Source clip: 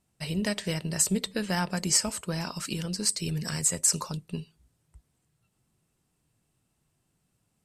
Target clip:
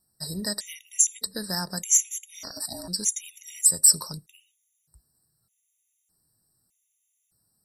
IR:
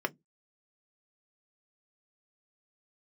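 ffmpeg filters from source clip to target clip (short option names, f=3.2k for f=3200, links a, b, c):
-filter_complex "[0:a]aexciter=amount=5.5:drive=3.1:freq=4.2k,asettb=1/sr,asplit=3[a][b][c];[a]atrim=end=2.344[d];[b]atrim=start=2.34:end=2.88,asetpts=PTS-STARTPTS,afade=t=in:d=0.004:c=qsin,afade=t=out:st=0.536:d=0.004:c=qsin,aeval=exprs='val(0)*sin(2*PI*450*n/s)':c=same[e];[c]atrim=start=2.876[f];[d][e]acrossfade=d=0.004:c1=hsin:c2=qsin[g];[g][f]acrossfade=d=0.004:c1=qsin:c2=hsin,afftfilt=real='re*gt(sin(2*PI*0.82*pts/sr)*(1-2*mod(floor(b*sr/1024/1900),2)),0)':imag='im*gt(sin(2*PI*0.82*pts/sr)*(1-2*mod(floor(b*sr/1024/1900),2)),0)':win_size=1024:overlap=0.75,volume=-4dB"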